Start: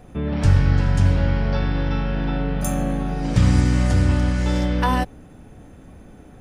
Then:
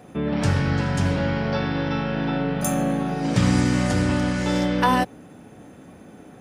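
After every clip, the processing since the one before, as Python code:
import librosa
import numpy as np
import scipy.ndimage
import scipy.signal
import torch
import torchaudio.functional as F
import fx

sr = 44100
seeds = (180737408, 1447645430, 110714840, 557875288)

y = scipy.signal.sosfilt(scipy.signal.butter(2, 160.0, 'highpass', fs=sr, output='sos'), x)
y = y * librosa.db_to_amplitude(2.5)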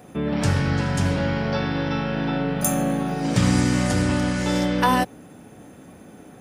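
y = fx.high_shelf(x, sr, hz=8100.0, db=8.0)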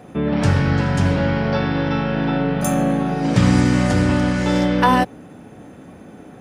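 y = fx.lowpass(x, sr, hz=3300.0, slope=6)
y = y * librosa.db_to_amplitude(4.5)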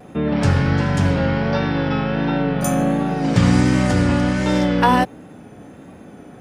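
y = fx.vibrato(x, sr, rate_hz=1.4, depth_cents=46.0)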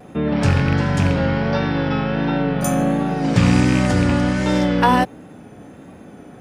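y = fx.rattle_buzz(x, sr, strikes_db=-11.0, level_db=-15.0)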